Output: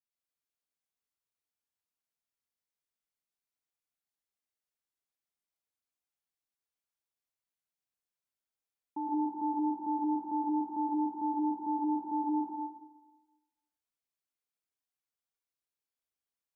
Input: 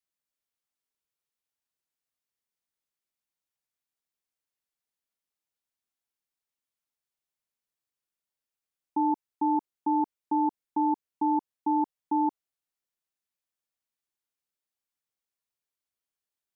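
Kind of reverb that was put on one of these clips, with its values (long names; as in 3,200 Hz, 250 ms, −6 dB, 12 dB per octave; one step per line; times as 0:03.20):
dense smooth reverb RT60 1.2 s, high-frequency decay 0.75×, pre-delay 100 ms, DRR −5 dB
level −10.5 dB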